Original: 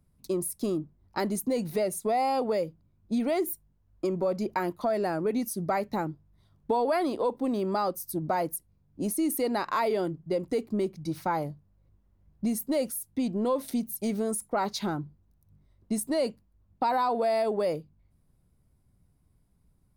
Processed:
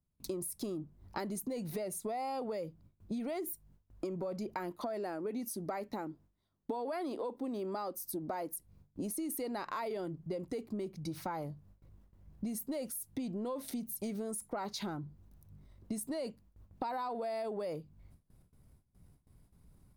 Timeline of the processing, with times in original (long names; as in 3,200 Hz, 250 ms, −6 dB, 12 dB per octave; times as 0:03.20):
0:04.71–0:08.56: low shelf with overshoot 190 Hz −7 dB, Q 1.5
whole clip: noise gate with hold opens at −57 dBFS; transient designer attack 0 dB, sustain +4 dB; downward compressor 4 to 1, threshold −43 dBFS; level +4 dB